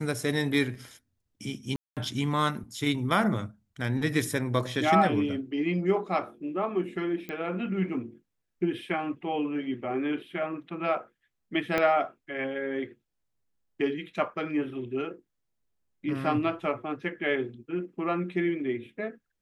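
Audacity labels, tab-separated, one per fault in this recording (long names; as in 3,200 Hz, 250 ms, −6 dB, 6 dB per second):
1.760000	1.970000	drop-out 207 ms
7.290000	7.290000	click −23 dBFS
11.780000	11.780000	click −13 dBFS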